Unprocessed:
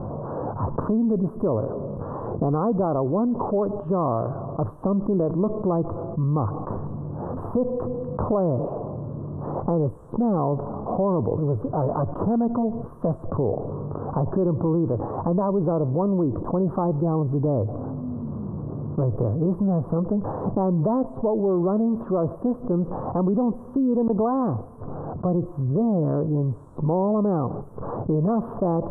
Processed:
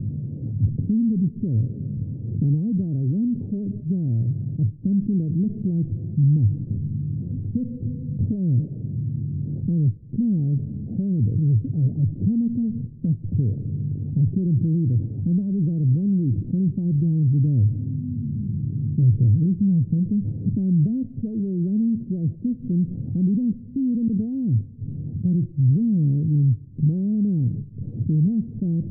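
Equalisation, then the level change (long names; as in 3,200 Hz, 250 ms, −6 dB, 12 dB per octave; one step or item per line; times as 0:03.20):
inverse Chebyshev low-pass filter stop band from 1,100 Hz, stop band 70 dB
spectral tilt +2 dB per octave
parametric band 110 Hz +10 dB 0.91 octaves
+6.0 dB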